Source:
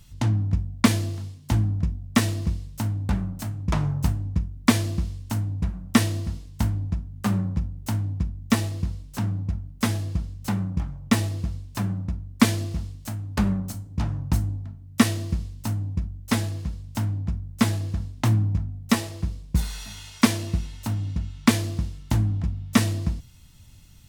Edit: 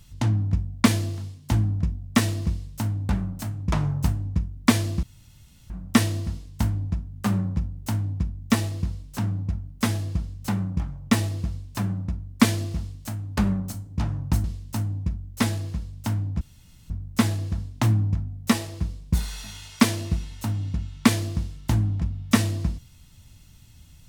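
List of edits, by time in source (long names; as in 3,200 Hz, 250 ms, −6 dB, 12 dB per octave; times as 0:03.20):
0:05.03–0:05.70: fill with room tone
0:14.44–0:15.35: remove
0:17.32: splice in room tone 0.49 s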